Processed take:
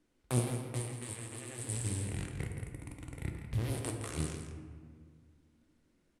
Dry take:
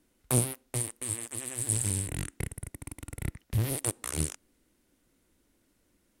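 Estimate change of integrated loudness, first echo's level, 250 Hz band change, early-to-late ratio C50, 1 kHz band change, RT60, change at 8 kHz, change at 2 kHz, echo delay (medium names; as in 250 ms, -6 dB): -7.0 dB, -9.0 dB, -2.5 dB, 4.0 dB, -3.0 dB, 1.9 s, -11.0 dB, -3.5 dB, 166 ms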